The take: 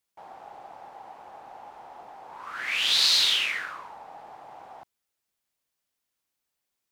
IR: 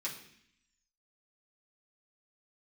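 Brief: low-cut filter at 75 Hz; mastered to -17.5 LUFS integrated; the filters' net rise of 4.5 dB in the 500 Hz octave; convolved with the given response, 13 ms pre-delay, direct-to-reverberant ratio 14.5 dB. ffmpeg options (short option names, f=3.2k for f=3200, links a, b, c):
-filter_complex "[0:a]highpass=75,equalizer=f=500:t=o:g=6,asplit=2[a][b];[1:a]atrim=start_sample=2205,adelay=13[c];[b][c]afir=irnorm=-1:irlink=0,volume=-16dB[d];[a][d]amix=inputs=2:normalize=0,volume=4.5dB"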